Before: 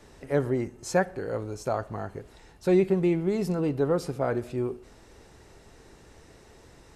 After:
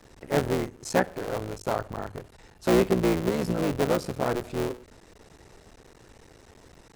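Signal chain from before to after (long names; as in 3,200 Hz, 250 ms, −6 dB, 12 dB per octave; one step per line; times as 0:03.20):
sub-harmonics by changed cycles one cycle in 3, muted
mains-hum notches 50/100 Hz
level +2 dB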